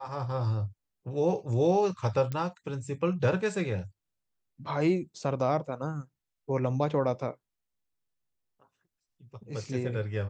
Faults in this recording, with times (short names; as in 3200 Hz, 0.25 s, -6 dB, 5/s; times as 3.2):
2.32 pop -21 dBFS